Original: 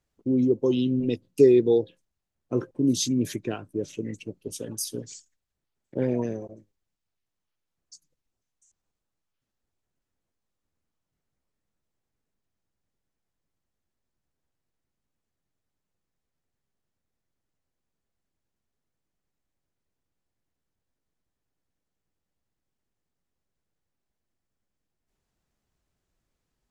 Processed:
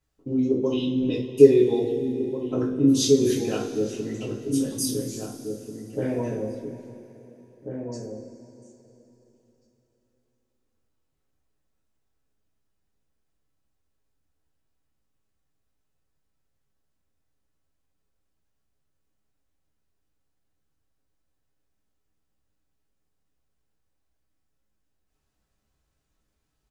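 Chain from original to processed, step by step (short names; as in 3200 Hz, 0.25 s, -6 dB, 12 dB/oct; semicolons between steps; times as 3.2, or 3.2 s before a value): outdoor echo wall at 290 m, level -6 dB; two-slope reverb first 0.35 s, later 3.6 s, from -18 dB, DRR -6.5 dB; gain -4.5 dB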